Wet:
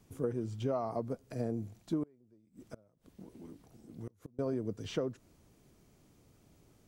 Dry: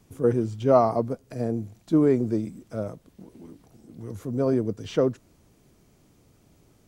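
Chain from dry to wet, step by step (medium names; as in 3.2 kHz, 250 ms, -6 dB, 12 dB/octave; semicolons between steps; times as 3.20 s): compression 10:1, threshold -25 dBFS, peak gain reduction 13 dB; 2.03–4.39 s: inverted gate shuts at -27 dBFS, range -29 dB; trim -5 dB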